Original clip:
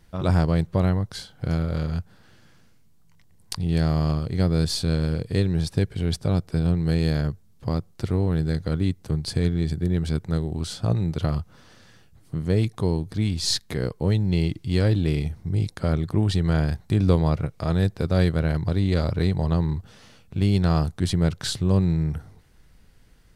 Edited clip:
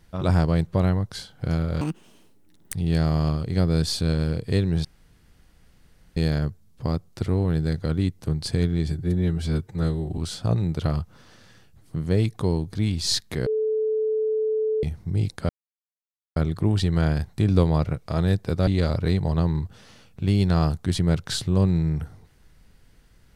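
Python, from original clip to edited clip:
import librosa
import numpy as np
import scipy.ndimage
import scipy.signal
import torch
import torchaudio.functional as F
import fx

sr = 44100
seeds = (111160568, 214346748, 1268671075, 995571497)

y = fx.edit(x, sr, fx.speed_span(start_s=1.81, length_s=1.75, speed=1.89),
    fx.room_tone_fill(start_s=5.67, length_s=1.32),
    fx.stretch_span(start_s=9.7, length_s=0.87, factor=1.5),
    fx.bleep(start_s=13.85, length_s=1.37, hz=435.0, db=-20.5),
    fx.insert_silence(at_s=15.88, length_s=0.87),
    fx.cut(start_s=18.19, length_s=0.62), tone=tone)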